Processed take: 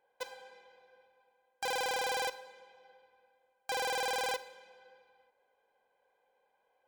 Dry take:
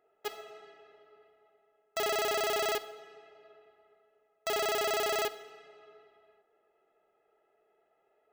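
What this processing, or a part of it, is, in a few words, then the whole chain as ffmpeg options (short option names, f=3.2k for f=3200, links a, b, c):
nightcore: -af "asetrate=53361,aresample=44100,volume=-3dB"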